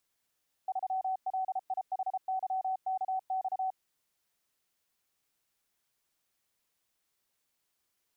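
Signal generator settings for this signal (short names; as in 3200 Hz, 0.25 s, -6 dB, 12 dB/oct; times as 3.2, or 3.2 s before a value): Morse "3LIHYKX" 33 wpm 756 Hz -29 dBFS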